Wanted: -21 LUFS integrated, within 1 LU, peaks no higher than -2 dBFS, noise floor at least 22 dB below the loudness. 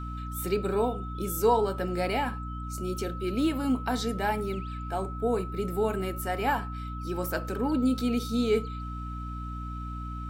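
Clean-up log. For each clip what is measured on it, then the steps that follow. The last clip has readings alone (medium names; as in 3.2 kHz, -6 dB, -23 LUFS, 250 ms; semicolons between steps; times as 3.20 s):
hum 60 Hz; highest harmonic 300 Hz; hum level -34 dBFS; steady tone 1.3 kHz; tone level -40 dBFS; loudness -30.0 LUFS; peak level -11.0 dBFS; loudness target -21.0 LUFS
-> de-hum 60 Hz, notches 5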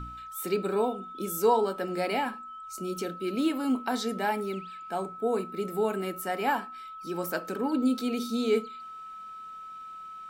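hum not found; steady tone 1.3 kHz; tone level -40 dBFS
-> band-stop 1.3 kHz, Q 30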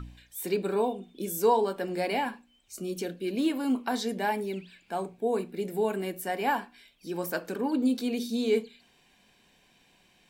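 steady tone not found; loudness -30.0 LUFS; peak level -11.5 dBFS; loudness target -21.0 LUFS
-> trim +9 dB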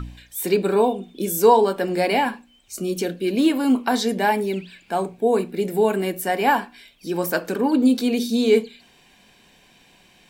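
loudness -21.0 LUFS; peak level -2.5 dBFS; noise floor -55 dBFS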